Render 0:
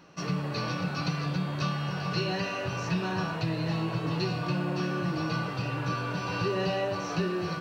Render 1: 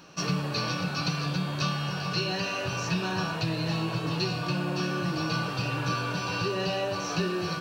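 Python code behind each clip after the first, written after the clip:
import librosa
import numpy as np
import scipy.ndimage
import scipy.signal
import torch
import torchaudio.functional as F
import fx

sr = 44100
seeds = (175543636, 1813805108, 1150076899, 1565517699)

y = fx.high_shelf(x, sr, hz=2500.0, db=8.0)
y = fx.notch(y, sr, hz=2000.0, q=10.0)
y = fx.rider(y, sr, range_db=10, speed_s=0.5)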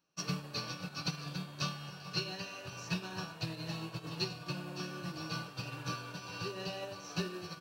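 y = fx.high_shelf(x, sr, hz=6000.0, db=9.5)
y = fx.upward_expand(y, sr, threshold_db=-41.0, expansion=2.5)
y = y * librosa.db_to_amplitude(-6.0)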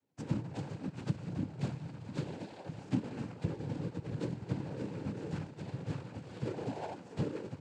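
y = scipy.ndimage.median_filter(x, 41, mode='constant')
y = fx.noise_vocoder(y, sr, seeds[0], bands=8)
y = y * librosa.db_to_amplitude(5.0)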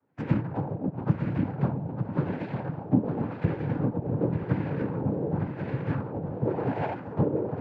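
y = fx.filter_lfo_lowpass(x, sr, shape='sine', hz=0.91, low_hz=660.0, high_hz=2100.0, q=1.7)
y = y + 10.0 ** (-7.0 / 20.0) * np.pad(y, (int(908 * sr / 1000.0), 0))[:len(y)]
y = y * librosa.db_to_amplitude(9.0)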